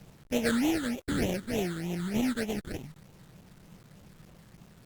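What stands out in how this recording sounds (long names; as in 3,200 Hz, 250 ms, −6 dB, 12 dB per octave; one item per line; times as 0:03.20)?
aliases and images of a low sample rate 1,100 Hz, jitter 20%
phaser sweep stages 8, 3.3 Hz, lowest notch 720–1,500 Hz
a quantiser's noise floor 10 bits, dither none
Opus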